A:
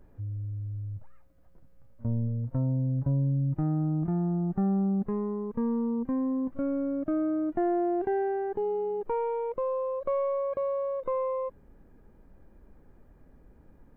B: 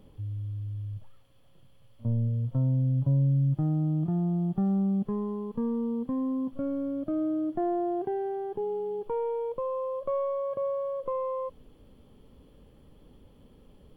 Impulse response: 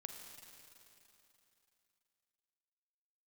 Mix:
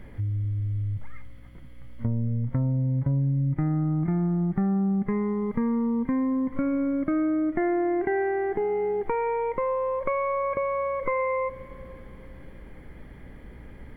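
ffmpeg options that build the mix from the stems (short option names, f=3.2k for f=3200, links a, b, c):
-filter_complex "[0:a]acontrast=82,lowpass=f=2.1k:t=q:w=13,volume=-1dB,asplit=2[a][b];[b]volume=-4dB[c];[1:a]acompressor=threshold=-30dB:ratio=6,volume=3dB[d];[2:a]atrim=start_sample=2205[e];[c][e]afir=irnorm=-1:irlink=0[f];[a][d][f]amix=inputs=3:normalize=0,aeval=exprs='val(0)+0.00398*(sin(2*PI*60*n/s)+sin(2*PI*2*60*n/s)/2+sin(2*PI*3*60*n/s)/3+sin(2*PI*4*60*n/s)/4+sin(2*PI*5*60*n/s)/5)':c=same,acompressor=threshold=-26dB:ratio=2.5"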